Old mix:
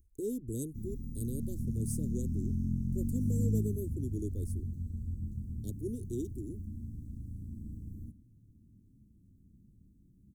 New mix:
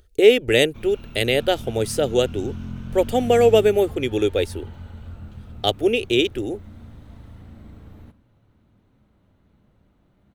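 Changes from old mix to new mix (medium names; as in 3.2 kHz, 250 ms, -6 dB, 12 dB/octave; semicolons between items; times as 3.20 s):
speech +9.5 dB; master: remove inverse Chebyshev band-stop 880–2500 Hz, stop band 70 dB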